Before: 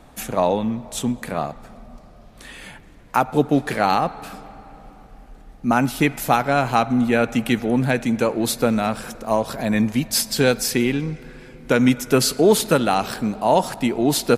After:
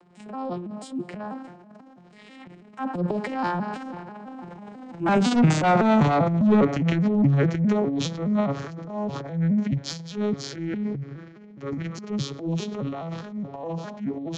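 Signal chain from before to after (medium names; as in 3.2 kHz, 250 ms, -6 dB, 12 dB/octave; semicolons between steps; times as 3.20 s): vocoder on a broken chord minor triad, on D#3, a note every 185 ms; Doppler pass-by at 5.55 s, 41 m/s, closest 24 m; in parallel at +1.5 dB: compression, threshold -49 dBFS, peak gain reduction 32.5 dB; on the sum: saturation -21.5 dBFS, distortion -8 dB; transient shaper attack -8 dB, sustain +10 dB; trim +8.5 dB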